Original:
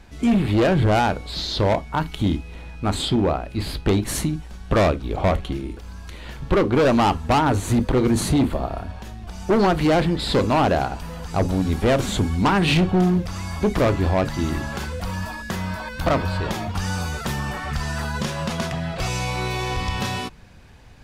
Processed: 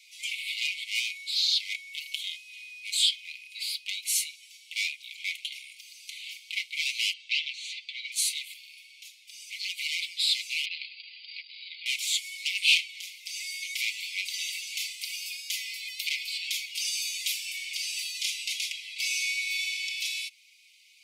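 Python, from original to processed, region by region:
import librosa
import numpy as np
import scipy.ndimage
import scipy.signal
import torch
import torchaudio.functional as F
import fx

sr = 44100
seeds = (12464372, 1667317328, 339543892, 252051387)

y = fx.chain(x, sr, fx.cheby1_bandpass(low_hz=1400.0, high_hz=4100.0, order=2),
    fx.comb(ms=7.5, depth=0.59), at=(7.13, 8.12))
y = fx.chain(y, sr, fx.brickwall_lowpass(high_hz=5000.0),
    fx.transformer_sat(knee_hz=200.0), at=(10.65, 11.86))
y = scipy.signal.sosfilt(scipy.signal.cheby1(10, 1.0, 2100.0, 'highpass', fs=sr, output='sos'), y)
y = y + 0.65 * np.pad(y, (int(4.9 * sr / 1000.0), 0))[:len(y)]
y = fx.rider(y, sr, range_db=3, speed_s=2.0)
y = y * 10.0 ** (1.5 / 20.0)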